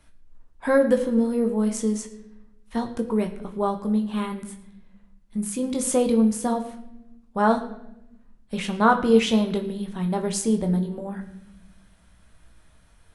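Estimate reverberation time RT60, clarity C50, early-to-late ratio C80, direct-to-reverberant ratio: 0.85 s, 11.0 dB, 13.5 dB, 4.0 dB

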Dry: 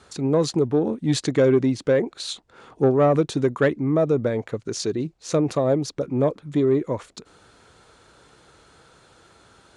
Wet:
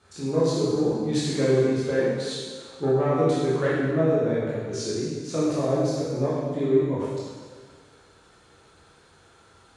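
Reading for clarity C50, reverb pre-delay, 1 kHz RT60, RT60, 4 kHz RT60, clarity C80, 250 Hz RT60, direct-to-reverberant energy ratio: -2.0 dB, 7 ms, 1.6 s, 1.6 s, 1.5 s, 0.5 dB, 1.6 s, -8.5 dB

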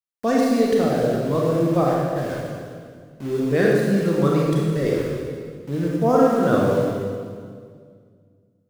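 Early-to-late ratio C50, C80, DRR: -2.0 dB, 0.5 dB, -4.0 dB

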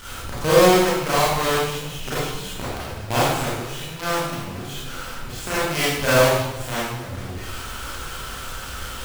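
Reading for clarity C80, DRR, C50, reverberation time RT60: 1.0 dB, -10.0 dB, -2.5 dB, 1.0 s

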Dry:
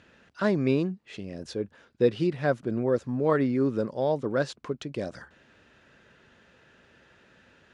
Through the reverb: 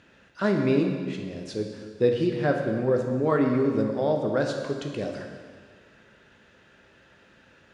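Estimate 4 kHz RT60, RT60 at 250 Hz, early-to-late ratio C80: 1.7 s, 1.8 s, 5.5 dB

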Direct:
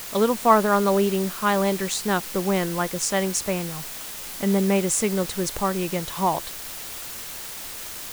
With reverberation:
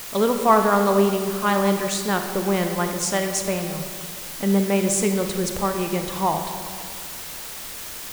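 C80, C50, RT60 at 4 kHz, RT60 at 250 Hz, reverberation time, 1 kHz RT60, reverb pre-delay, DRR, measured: 7.5 dB, 6.0 dB, 1.2 s, 2.1 s, 2.0 s, 2.0 s, 27 ms, 5.0 dB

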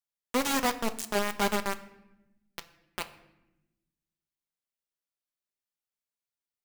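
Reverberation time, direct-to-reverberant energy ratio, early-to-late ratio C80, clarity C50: 0.95 s, 7.5 dB, 17.0 dB, 14.5 dB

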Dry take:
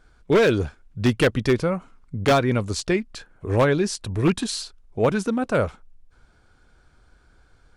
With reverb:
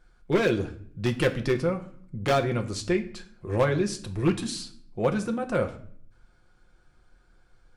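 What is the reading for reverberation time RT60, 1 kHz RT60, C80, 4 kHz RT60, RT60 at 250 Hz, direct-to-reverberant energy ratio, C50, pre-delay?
0.60 s, 0.55 s, 17.5 dB, 0.45 s, 0.90 s, 4.0 dB, 14.0 dB, 5 ms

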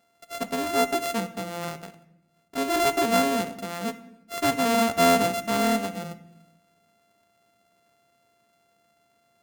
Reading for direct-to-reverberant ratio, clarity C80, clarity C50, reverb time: 11.5 dB, 17.0 dB, 14.5 dB, 0.85 s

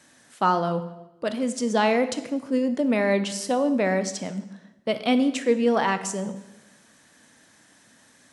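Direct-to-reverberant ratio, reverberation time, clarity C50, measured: 10.0 dB, 1.0 s, 12.0 dB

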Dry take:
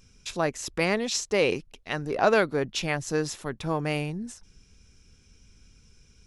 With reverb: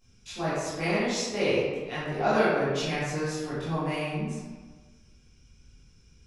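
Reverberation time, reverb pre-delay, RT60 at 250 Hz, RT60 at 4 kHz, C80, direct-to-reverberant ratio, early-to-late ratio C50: 1.4 s, 14 ms, 1.3 s, 0.75 s, 0.5 dB, -12.0 dB, -2.5 dB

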